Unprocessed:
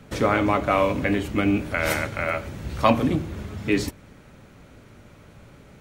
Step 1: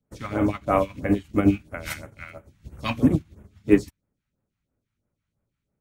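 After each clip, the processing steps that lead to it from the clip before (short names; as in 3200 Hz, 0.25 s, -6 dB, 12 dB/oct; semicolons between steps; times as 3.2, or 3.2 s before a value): phaser stages 2, 3 Hz, lowest notch 410–4300 Hz; upward expander 2.5:1, over -42 dBFS; gain +6.5 dB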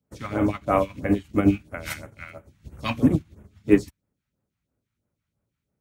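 HPF 44 Hz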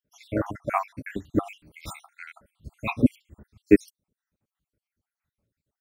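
random spectral dropouts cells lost 68%; gain +1 dB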